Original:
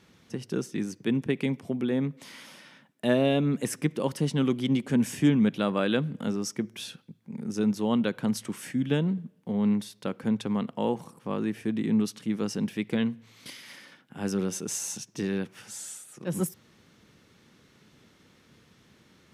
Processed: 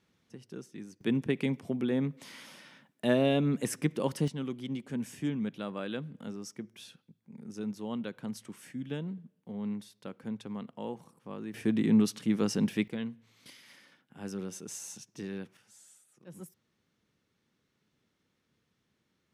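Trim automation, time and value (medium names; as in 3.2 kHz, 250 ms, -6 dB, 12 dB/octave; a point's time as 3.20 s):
-13.5 dB
from 1.01 s -2.5 dB
from 4.28 s -11 dB
from 11.54 s +1 dB
from 12.88 s -9.5 dB
from 15.57 s -18 dB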